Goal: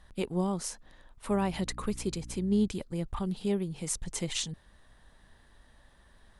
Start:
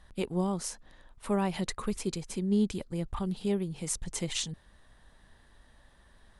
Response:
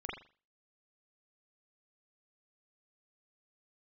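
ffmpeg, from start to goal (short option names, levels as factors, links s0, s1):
-filter_complex "[0:a]asettb=1/sr,asplit=3[s0][s1][s2];[s0]atrim=end=1.294[s3];[s1]atrim=start=1.29:end=2.68,asetpts=PTS-STARTPTS,afade=t=in:d=0.004:c=qsin,afade=t=out:st=1.386:d=0.004:c=qsin,aeval=exprs='val(0)+0.00631*(sin(2*PI*60*n/s)+sin(2*PI*2*60*n/s)/2+sin(2*PI*3*60*n/s)/3+sin(2*PI*4*60*n/s)/4+sin(2*PI*5*60*n/s)/5)':c=same[s4];[s2]atrim=start=2.676[s5];[s3][s4]acrossfade=d=0.004:c1=hsin:c2=qsin[s6];[s6][s5]acrossfade=d=0.004:c1=qsin:c2=hsin"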